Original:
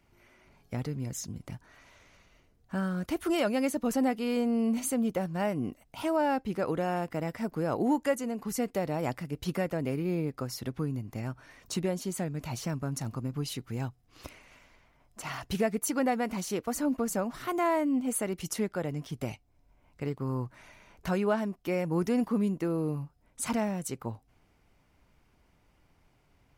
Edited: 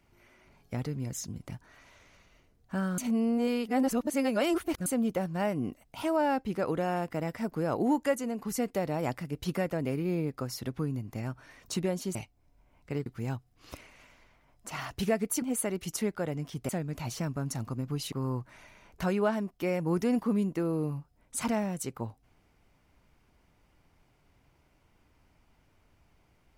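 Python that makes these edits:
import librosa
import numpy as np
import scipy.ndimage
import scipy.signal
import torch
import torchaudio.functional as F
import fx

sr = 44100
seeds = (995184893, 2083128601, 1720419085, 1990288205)

y = fx.edit(x, sr, fx.reverse_span(start_s=2.98, length_s=1.88),
    fx.swap(start_s=12.15, length_s=1.43, other_s=19.26, other_length_s=0.91),
    fx.cut(start_s=15.94, length_s=2.05), tone=tone)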